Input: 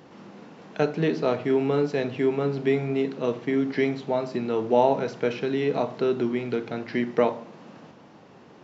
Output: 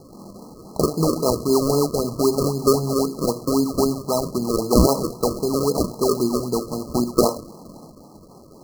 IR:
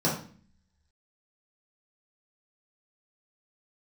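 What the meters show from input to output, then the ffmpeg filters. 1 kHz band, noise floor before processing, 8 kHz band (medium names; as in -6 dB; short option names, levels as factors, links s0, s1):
+3.5 dB, -50 dBFS, no reading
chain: -af "acrusher=samples=37:mix=1:aa=0.000001:lfo=1:lforange=37:lforate=3.8,afftfilt=real='re*(1-between(b*sr/4096,1300,4000))':imag='im*(1-between(b*sr/4096,1300,4000))':win_size=4096:overlap=0.75,adynamicequalizer=threshold=0.01:dfrequency=750:dqfactor=1.8:tfrequency=750:tqfactor=1.8:attack=5:release=100:ratio=0.375:range=2:mode=cutabove:tftype=bell,volume=1.78"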